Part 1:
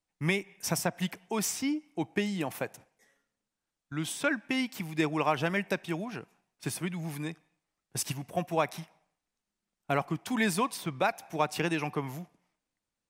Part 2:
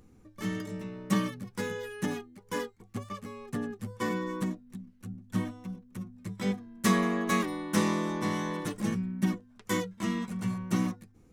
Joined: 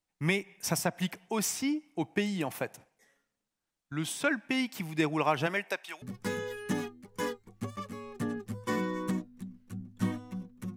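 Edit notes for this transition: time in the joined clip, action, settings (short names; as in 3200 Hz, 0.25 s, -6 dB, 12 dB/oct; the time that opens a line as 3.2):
part 1
5.46–6.02 HPF 230 Hz -> 1400 Hz
6.02 switch to part 2 from 1.35 s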